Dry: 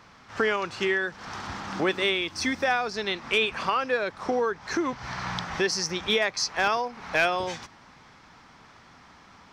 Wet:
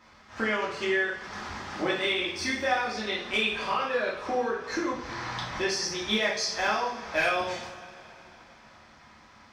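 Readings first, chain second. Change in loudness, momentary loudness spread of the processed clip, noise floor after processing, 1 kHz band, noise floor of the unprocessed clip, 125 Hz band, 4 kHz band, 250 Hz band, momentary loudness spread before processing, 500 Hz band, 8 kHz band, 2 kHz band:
-2.0 dB, 11 LU, -55 dBFS, -2.0 dB, -53 dBFS, -3.5 dB, -1.5 dB, -2.0 dB, 9 LU, -2.5 dB, -2.0 dB, -1.5 dB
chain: two-slope reverb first 0.52 s, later 3.9 s, from -21 dB, DRR -6 dB; trim -8.5 dB

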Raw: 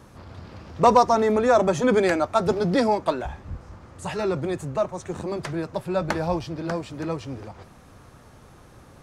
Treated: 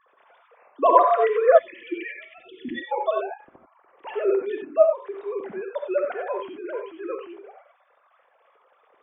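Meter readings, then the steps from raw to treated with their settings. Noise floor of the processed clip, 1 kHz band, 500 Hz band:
-63 dBFS, -0.5 dB, +1.0 dB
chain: formants replaced by sine waves; gated-style reverb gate 110 ms rising, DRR 3 dB; time-frequency box 1.58–2.92 s, 370–1700 Hz -30 dB; trim -1 dB

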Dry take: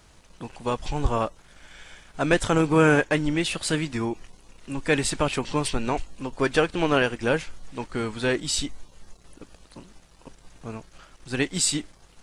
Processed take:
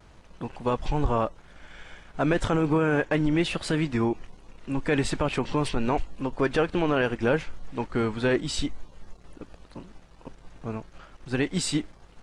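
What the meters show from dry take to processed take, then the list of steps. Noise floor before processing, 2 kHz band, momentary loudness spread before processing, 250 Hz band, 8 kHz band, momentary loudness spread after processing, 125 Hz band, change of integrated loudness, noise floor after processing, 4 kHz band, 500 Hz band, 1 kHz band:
-55 dBFS, -4.0 dB, 17 LU, 0.0 dB, -9.0 dB, 16 LU, 0.0 dB, -2.0 dB, -53 dBFS, -4.5 dB, -1.5 dB, -1.5 dB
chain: low-pass 1.9 kHz 6 dB/octave; peak limiter -17 dBFS, peak gain reduction 10 dB; vibrato 0.36 Hz 16 cents; trim +3 dB

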